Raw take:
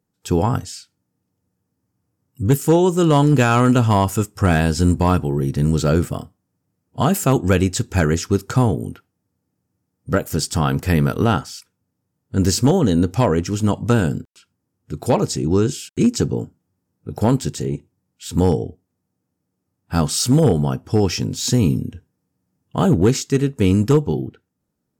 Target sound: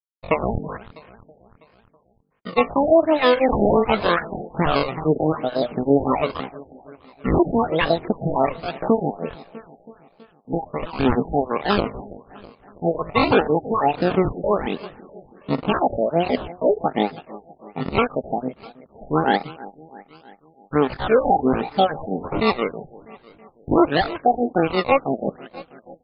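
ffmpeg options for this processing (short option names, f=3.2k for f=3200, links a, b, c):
-filter_complex "[0:a]acrossover=split=6400[a][b];[b]acompressor=threshold=-45dB:ratio=4:attack=1:release=60[c];[a][c]amix=inputs=2:normalize=0,agate=range=-46dB:threshold=-43dB:ratio=16:detection=peak,bandreject=f=5.1k:w=5,acrossover=split=190|4600[d][e][f];[d]acompressor=threshold=-30dB:ratio=6[g];[g][e][f]amix=inputs=3:normalize=0,acrossover=split=710[h][i];[h]aeval=exprs='val(0)*(1-1/2+1/2*cos(2*PI*6.3*n/s))':c=same[j];[i]aeval=exprs='val(0)*(1-1/2-1/2*cos(2*PI*6.3*n/s))':c=same[k];[j][k]amix=inputs=2:normalize=0,acrusher=samples=33:mix=1:aa=0.000001:lfo=1:lforange=33:lforate=0.89,aphaser=in_gain=1:out_gain=1:delay=3.3:decay=0.52:speed=1.4:type=sinusoidal,asetrate=80880,aresample=44100,atempo=0.545254,aecho=1:1:312|624|936|1248|1560:0.1|0.058|0.0336|0.0195|0.0113,asetrate=42336,aresample=44100,alimiter=level_in=9.5dB:limit=-1dB:release=50:level=0:latency=1,afftfilt=real='re*lt(b*sr/1024,820*pow(5200/820,0.5+0.5*sin(2*PI*1.3*pts/sr)))':imag='im*lt(b*sr/1024,820*pow(5200/820,0.5+0.5*sin(2*PI*1.3*pts/sr)))':win_size=1024:overlap=0.75,volume=-5dB"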